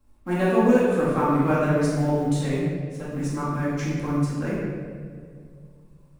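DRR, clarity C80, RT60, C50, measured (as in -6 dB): -9.5 dB, 0.5 dB, 2.1 s, -2.0 dB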